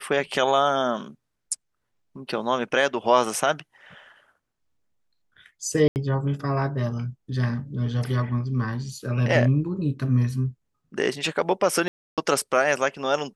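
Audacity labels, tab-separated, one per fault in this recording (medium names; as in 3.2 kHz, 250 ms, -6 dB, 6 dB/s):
5.880000	5.960000	dropout 79 ms
11.880000	12.180000	dropout 297 ms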